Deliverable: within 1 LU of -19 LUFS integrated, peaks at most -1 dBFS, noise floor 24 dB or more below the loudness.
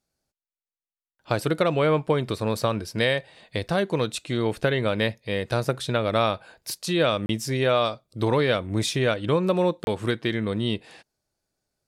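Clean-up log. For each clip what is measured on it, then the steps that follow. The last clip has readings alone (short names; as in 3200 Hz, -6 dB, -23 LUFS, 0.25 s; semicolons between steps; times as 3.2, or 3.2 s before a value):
dropouts 2; longest dropout 31 ms; loudness -25.0 LUFS; peak -8.5 dBFS; loudness target -19.0 LUFS
-> interpolate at 7.26/9.84, 31 ms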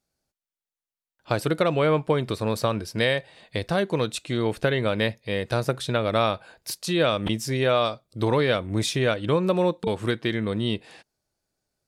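dropouts 0; loudness -25.0 LUFS; peak -8.5 dBFS; loudness target -19.0 LUFS
-> gain +6 dB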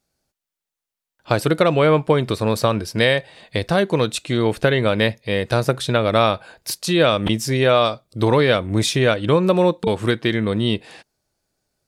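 loudness -19.0 LUFS; peak -2.5 dBFS; noise floor -86 dBFS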